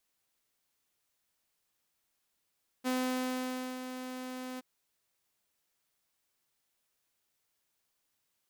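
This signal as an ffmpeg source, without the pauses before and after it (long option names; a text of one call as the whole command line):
ffmpeg -f lavfi -i "aevalsrc='0.0473*(2*mod(255*t,1)-1)':duration=1.772:sample_rate=44100,afade=type=in:duration=0.032,afade=type=out:start_time=0.032:duration=0.911:silence=0.316,afade=type=out:start_time=1.75:duration=0.022" out.wav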